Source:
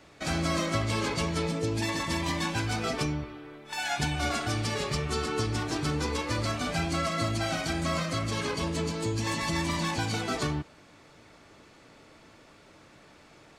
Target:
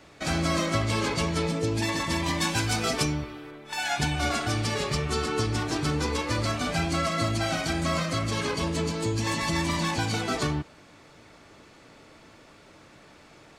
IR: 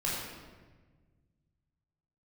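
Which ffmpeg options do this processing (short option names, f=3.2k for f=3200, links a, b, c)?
-filter_complex "[0:a]asettb=1/sr,asplit=3[a][b][c];[a]atrim=end=2.414[d];[b]atrim=start=2.41:end=3.51,asetpts=PTS-STARTPTS,afade=t=in:d=0.004:c=qsin,afade=t=out:st=1.096:d=0.004:c=qsin,highshelf=f=4.6k:g=9[e];[c]atrim=start=3.506[f];[d][e]acrossfade=d=0.004:c1=hsin:c2=qsin[g];[g][f]acrossfade=d=0.004:c1=qsin:c2=hsin,volume=2.5dB"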